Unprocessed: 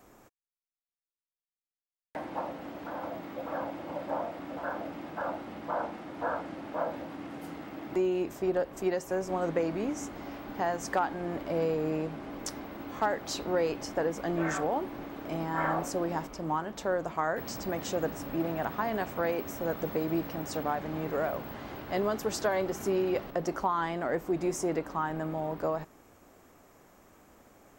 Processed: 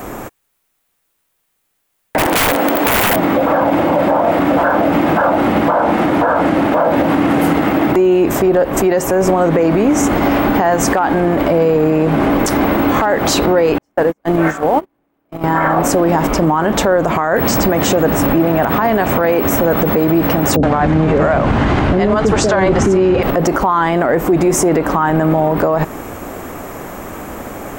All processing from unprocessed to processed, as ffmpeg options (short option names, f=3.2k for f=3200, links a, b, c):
-filter_complex "[0:a]asettb=1/sr,asplit=3[a][b][c];[a]atrim=end=2.184[d];[b]atrim=start=2.18:end=3.16,asetpts=PTS-STARTPTS,afade=t=in:d=0.004:c=qsin,afade=t=out:st=0.976:d=0.004:c=qsin,highpass=270,highshelf=f=8.7k:g=9.5,aeval=exprs='(mod(50.1*val(0)+1,2)-1)/50.1':c=same[e];[c]atrim=start=3.156[f];[d][e]acrossfade=d=0.004:c1=hsin:c2=qsin[g];[g][f]acrossfade=d=0.004:c1=qsin:c2=hsin,asettb=1/sr,asplit=3[h][i][j];[h]atrim=end=13.784[k];[i]atrim=start=13.78:end=15.44,asetpts=PTS-STARTPTS,afade=t=in:d=0.004:c=qsin,afade=t=out:st=1.656:d=0.004:c=qsin,aeval=exprs='val(0)+0.5*0.00631*sgn(val(0))':c=same,agate=range=-57dB:threshold=-29dB:ratio=16:release=100:detection=peak[l];[j]atrim=start=15.436[m];[k][l]acrossfade=d=0.004:c1=hsin:c2=qsin[n];[n][m]acrossfade=d=0.004:c1=qsin:c2=hsin,asettb=1/sr,asplit=3[o][p][q];[o]atrim=end=20.564[r];[p]atrim=start=20.56:end=23.23,asetpts=PTS-STARTPTS,afade=t=in:d=0.004:c=qsin,afade=t=out:st=2.666:d=0.004:c=qsin,lowpass=f=7.8k:w=0.5412,lowpass=f=7.8k:w=1.3066,lowshelf=f=150:g=9.5,acrossover=split=530[s][t];[t]adelay=70[u];[s][u]amix=inputs=2:normalize=0,atrim=end_sample=117747[v];[q]atrim=start=23.226[w];[r][v]acrossfade=d=0.004:c1=hsin:c2=qsin[x];[x][w]acrossfade=d=0.004:c1=qsin:c2=hsin,equalizer=f=5.1k:t=o:w=1.2:g=-7,acompressor=threshold=-34dB:ratio=4,alimiter=level_in=34.5dB:limit=-1dB:release=50:level=0:latency=1,volume=-4dB"